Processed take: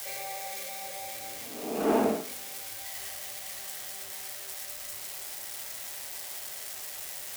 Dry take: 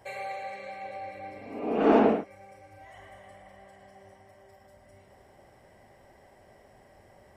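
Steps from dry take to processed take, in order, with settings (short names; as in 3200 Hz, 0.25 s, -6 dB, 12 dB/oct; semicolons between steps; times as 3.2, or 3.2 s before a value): switching spikes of -22 dBFS; on a send: reverb, pre-delay 3 ms, DRR 12 dB; on the sum: gain -5 dB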